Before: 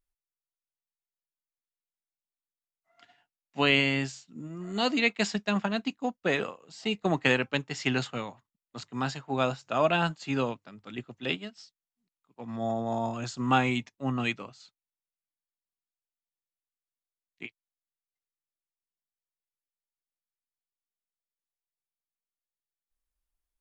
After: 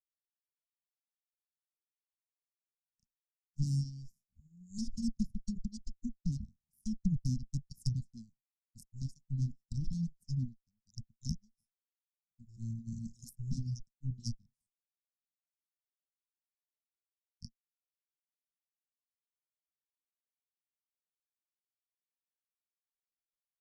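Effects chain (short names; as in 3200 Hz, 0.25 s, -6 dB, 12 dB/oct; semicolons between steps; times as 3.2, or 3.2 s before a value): added harmonics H 3 -9 dB, 5 -34 dB, 8 -11 dB, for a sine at -8 dBFS; reverb removal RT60 1.3 s; Chebyshev band-stop 230–5300 Hz, order 5; treble ducked by the level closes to 2300 Hz, closed at -31 dBFS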